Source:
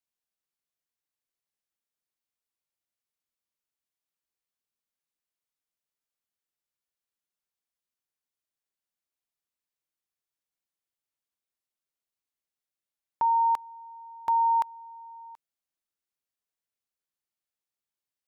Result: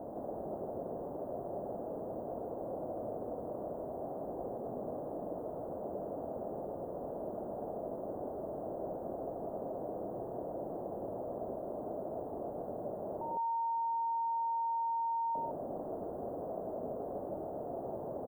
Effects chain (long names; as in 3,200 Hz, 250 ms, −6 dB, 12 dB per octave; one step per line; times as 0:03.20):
sign of each sample alone
elliptic low-pass filter 660 Hz, stop band 70 dB
spectral tilt +4.5 dB per octave
loudspeakers that aren't time-aligned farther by 35 metres −4 dB, 54 metres −1 dB
level +17 dB